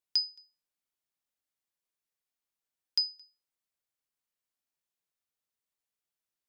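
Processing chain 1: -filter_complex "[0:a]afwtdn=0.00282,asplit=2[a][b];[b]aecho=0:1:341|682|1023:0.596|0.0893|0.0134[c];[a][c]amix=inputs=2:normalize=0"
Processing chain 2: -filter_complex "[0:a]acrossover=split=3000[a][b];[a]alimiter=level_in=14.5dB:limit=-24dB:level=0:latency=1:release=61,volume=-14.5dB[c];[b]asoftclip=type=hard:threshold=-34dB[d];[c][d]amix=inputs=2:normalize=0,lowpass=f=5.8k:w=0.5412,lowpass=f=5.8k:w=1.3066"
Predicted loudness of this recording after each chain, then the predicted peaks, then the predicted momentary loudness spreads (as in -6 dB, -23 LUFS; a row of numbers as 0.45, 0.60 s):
-32.5, -39.5 LUFS; -18.0, -30.5 dBFS; 21, 17 LU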